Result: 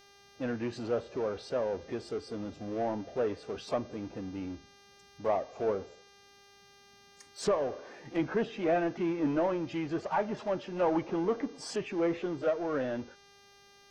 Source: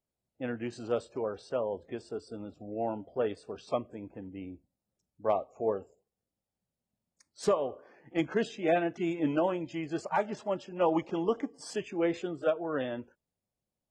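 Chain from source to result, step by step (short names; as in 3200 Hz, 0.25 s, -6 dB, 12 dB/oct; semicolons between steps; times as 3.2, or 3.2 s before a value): power-law curve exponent 0.7; treble ducked by the level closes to 2200 Hz, closed at -25 dBFS; buzz 400 Hz, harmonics 16, -56 dBFS -2 dB/oct; gain -3.5 dB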